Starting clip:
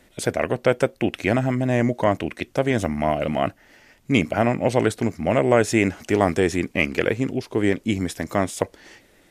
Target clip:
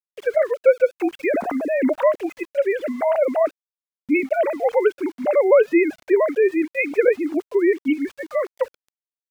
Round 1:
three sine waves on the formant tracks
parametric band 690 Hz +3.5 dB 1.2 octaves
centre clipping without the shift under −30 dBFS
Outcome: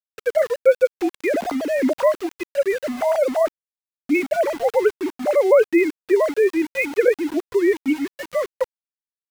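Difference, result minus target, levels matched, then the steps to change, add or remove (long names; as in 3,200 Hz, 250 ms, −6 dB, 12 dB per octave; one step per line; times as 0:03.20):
centre clipping without the shift: distortion +12 dB
change: centre clipping without the shift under −41 dBFS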